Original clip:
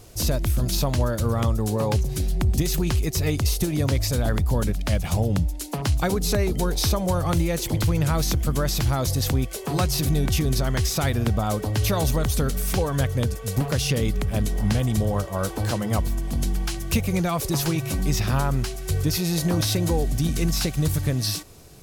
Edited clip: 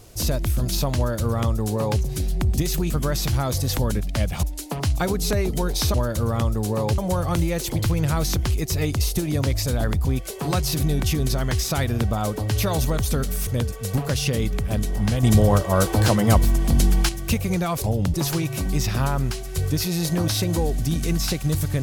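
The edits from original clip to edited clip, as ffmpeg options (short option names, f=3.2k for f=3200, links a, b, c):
-filter_complex "[0:a]asplit=13[a][b][c][d][e][f][g][h][i][j][k][l][m];[a]atrim=end=2.902[n];[b]atrim=start=8.428:end=9.312[o];[c]atrim=start=4.498:end=5.152[p];[d]atrim=start=5.448:end=6.962[q];[e]atrim=start=0.968:end=2.012[r];[f]atrim=start=6.958:end=8.432[s];[g]atrim=start=2.898:end=4.502[t];[h]atrim=start=9.308:end=12.732[u];[i]atrim=start=13.098:end=14.862[v];[j]atrim=start=14.858:end=16.722,asetpts=PTS-STARTPTS,volume=7dB[w];[k]atrim=start=16.718:end=17.472[x];[l]atrim=start=5.148:end=5.452[y];[m]atrim=start=17.468[z];[n][o]acrossfade=d=0.004:c1=hsin:c2=hsin[aa];[aa][p]acrossfade=d=0.004:c1=hsin:c2=hsin[ab];[ab][q]acrossfade=d=0.004:c1=hsin:c2=hsin[ac];[ac][r]acrossfade=d=0.004:c1=hsin:c2=hsin[ad];[ad][s]acrossfade=d=0.004:c1=hsin:c2=hsin[ae];[ae][t]acrossfade=d=0.004:c1=hsin:c2=hsin[af];[af][u]acrossfade=d=0.004:c1=hsin:c2=hsin[ag];[ag][v]acrossfade=d=0.004:c1=hsin:c2=hsin[ah];[ah][w]acrossfade=d=0.004:c1=hsin:c2=hsin[ai];[ai][x]acrossfade=d=0.004:c1=hsin:c2=hsin[aj];[aj][y]acrossfade=d=0.004:c1=hsin:c2=hsin[ak];[ak][z]acrossfade=d=0.004:c1=hsin:c2=hsin"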